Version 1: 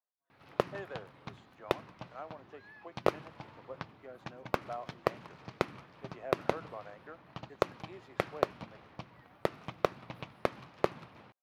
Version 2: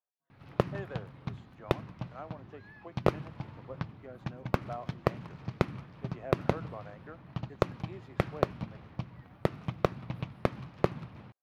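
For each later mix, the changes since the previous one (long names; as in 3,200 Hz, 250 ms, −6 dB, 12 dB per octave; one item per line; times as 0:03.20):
master: add bass and treble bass +13 dB, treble −2 dB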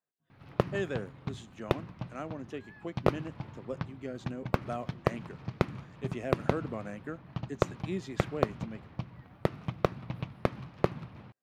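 speech: remove resonant band-pass 880 Hz, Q 1.6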